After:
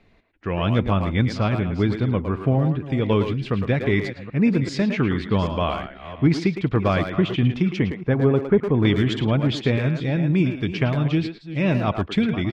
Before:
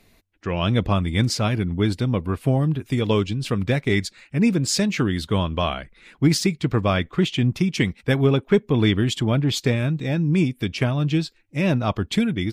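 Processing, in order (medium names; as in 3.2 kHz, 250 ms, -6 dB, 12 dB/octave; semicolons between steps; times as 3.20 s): chunks repeated in reverse 391 ms, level -13.5 dB; low-pass 2.7 kHz 12 dB/octave, from 7.79 s 1.4 kHz, from 8.85 s 3.4 kHz; speakerphone echo 110 ms, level -6 dB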